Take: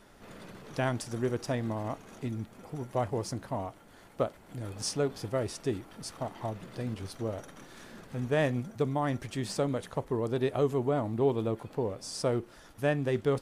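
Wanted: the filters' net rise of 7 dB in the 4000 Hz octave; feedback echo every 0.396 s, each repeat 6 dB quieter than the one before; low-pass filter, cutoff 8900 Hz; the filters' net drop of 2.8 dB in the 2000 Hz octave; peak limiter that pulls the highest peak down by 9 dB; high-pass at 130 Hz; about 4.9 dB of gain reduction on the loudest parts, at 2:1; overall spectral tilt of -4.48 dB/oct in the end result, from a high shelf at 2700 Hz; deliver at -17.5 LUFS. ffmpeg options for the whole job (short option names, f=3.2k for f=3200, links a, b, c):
-af "highpass=130,lowpass=8.9k,equalizer=f=2k:t=o:g=-7.5,highshelf=f=2.7k:g=8,equalizer=f=4k:t=o:g=3.5,acompressor=threshold=-31dB:ratio=2,alimiter=level_in=3dB:limit=-24dB:level=0:latency=1,volume=-3dB,aecho=1:1:396|792|1188|1584|1980|2376:0.501|0.251|0.125|0.0626|0.0313|0.0157,volume=20.5dB"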